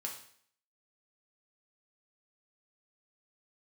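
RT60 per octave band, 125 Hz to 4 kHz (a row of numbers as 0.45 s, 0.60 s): 0.55 s, 0.60 s, 0.60 s, 0.60 s, 0.60 s, 0.60 s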